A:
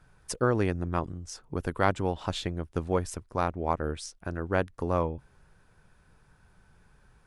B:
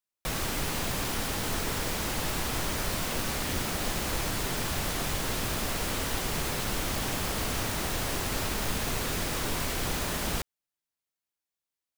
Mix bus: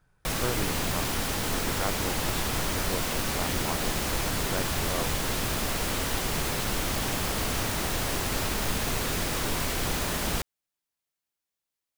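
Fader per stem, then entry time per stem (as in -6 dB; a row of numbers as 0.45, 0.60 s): -7.5, +2.0 dB; 0.00, 0.00 s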